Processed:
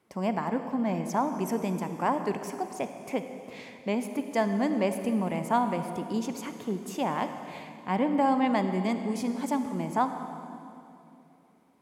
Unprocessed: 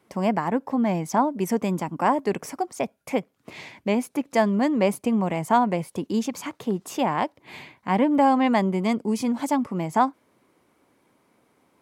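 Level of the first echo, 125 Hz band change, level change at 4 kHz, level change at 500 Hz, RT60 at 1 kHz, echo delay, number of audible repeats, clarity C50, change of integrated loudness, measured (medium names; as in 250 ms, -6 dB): no echo, -5.0 dB, -5.5 dB, -5.0 dB, 2.6 s, no echo, no echo, 8.0 dB, -5.5 dB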